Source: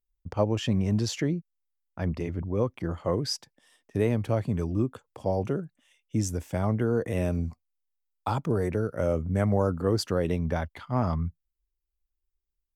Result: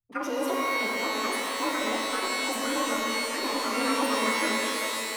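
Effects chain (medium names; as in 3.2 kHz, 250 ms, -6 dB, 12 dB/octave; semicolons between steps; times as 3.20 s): frequency axis rescaled in octaves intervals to 91%; wide varispeed 2.47×; pitch-shifted reverb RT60 3 s, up +12 st, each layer -2 dB, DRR -1.5 dB; trim -5.5 dB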